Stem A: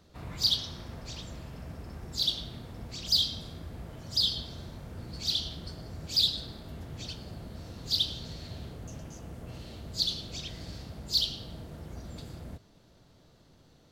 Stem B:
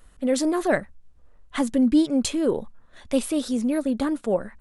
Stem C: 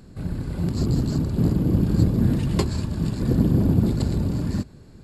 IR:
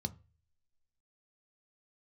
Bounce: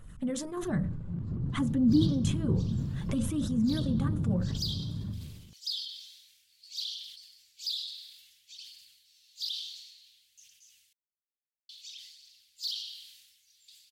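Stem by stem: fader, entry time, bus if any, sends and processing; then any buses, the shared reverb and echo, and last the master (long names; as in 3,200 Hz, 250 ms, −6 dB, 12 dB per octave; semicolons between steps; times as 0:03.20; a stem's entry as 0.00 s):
−6.0 dB, 1.50 s, muted 0:10.93–0:11.69, bus A, no send, inverse Chebyshev high-pass filter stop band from 1,100 Hz, stop band 50 dB
−1.5 dB, 0.00 s, bus A, send −13.5 dB, parametric band 120 Hz +12 dB 1.9 octaves; sample-and-hold tremolo
−16.5 dB, 0.50 s, no bus, send −10 dB, high-shelf EQ 2,100 Hz −10.5 dB; treble cut that deepens with the level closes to 2,700 Hz, closed at −18 dBFS
bus A: 0.0 dB, phase shifter 0.57 Hz, delay 4.1 ms, feedback 31%; downward compressor 3 to 1, threshold −33 dBFS, peak gain reduction 16.5 dB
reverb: on, RT60 0.35 s, pre-delay 3 ms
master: level that may fall only so fast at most 48 dB per second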